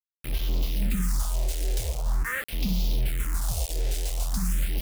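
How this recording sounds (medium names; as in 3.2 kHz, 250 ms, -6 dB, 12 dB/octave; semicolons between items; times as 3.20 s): a quantiser's noise floor 6-bit, dither none; phasing stages 4, 0.45 Hz, lowest notch 190–1600 Hz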